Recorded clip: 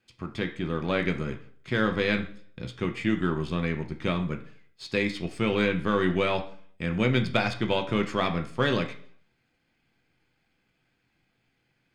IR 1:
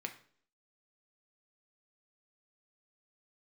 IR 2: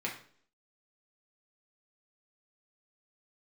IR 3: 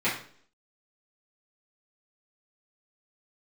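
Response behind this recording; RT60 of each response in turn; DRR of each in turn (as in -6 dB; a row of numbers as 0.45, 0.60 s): 1; 0.55, 0.55, 0.55 s; 4.0, -3.0, -11.0 dB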